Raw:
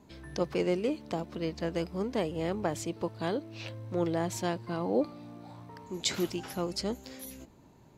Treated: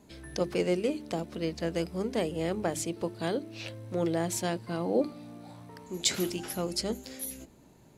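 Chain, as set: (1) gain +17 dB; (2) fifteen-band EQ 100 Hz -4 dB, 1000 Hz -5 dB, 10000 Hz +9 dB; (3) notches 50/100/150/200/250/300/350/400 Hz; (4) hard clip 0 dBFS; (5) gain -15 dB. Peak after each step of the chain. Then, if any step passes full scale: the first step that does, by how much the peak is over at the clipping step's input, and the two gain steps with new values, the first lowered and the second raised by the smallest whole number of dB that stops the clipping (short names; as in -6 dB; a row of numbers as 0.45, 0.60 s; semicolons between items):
+1.0, +3.0, +3.0, 0.0, -15.0 dBFS; step 1, 3.0 dB; step 1 +14 dB, step 5 -12 dB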